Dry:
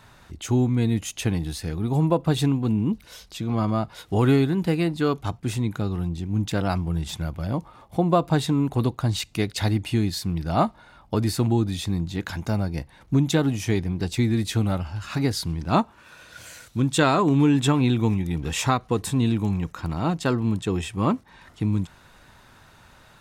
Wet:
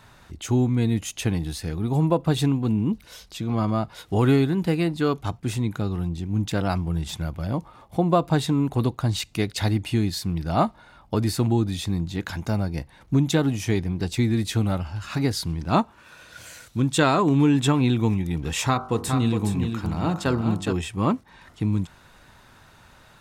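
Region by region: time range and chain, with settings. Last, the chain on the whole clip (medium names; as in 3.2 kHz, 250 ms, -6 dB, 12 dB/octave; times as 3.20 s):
18.67–20.73 s: de-hum 48.24 Hz, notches 32 + delay 414 ms -6.5 dB
whole clip: none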